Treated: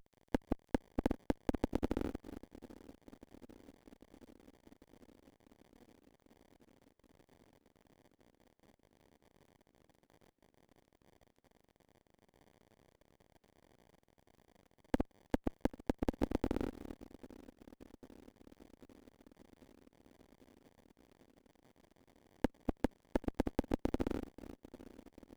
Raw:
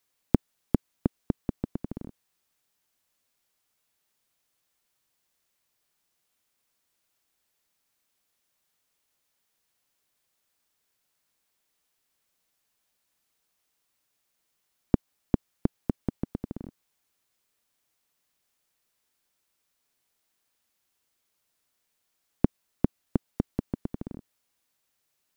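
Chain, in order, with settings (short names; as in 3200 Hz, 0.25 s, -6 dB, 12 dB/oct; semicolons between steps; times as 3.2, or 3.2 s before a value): reverse delay 0.217 s, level -11 dB; HPF 500 Hz 12 dB/oct; bell 710 Hz -12.5 dB 0.63 oct; in parallel at -2.5 dB: limiter -28 dBFS, peak gain reduction 10.5 dB; on the sum: bit-crush 12-bit; soft clip -33 dBFS, distortion -4 dB; darkening echo 0.795 s, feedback 74%, low-pass 2800 Hz, level -20 dB; running maximum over 33 samples; gain +11 dB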